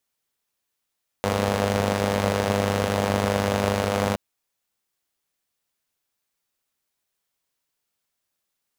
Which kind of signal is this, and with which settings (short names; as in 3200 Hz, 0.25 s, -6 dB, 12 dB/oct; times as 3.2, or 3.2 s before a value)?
four-cylinder engine model, steady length 2.92 s, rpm 3000, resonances 97/210/480 Hz